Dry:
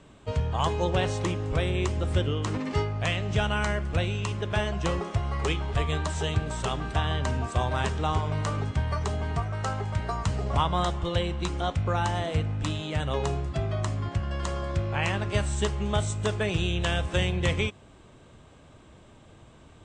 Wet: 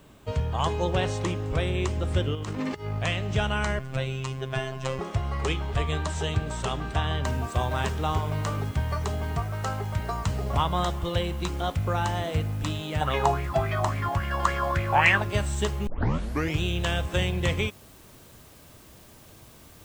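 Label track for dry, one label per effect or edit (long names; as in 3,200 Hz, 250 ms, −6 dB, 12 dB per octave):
2.350000	2.990000	compressor whose output falls as the input rises −31 dBFS, ratio −0.5
3.790000	4.990000	phases set to zero 132 Hz
7.250000	7.250000	noise floor change −68 dB −55 dB
13.010000	15.220000	auto-filter bell 3.6 Hz 770–2,300 Hz +18 dB
15.870000	15.870000	tape start 0.74 s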